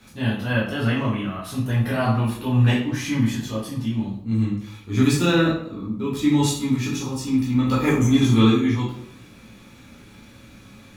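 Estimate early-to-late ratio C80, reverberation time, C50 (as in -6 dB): 8.0 dB, 0.65 s, 4.0 dB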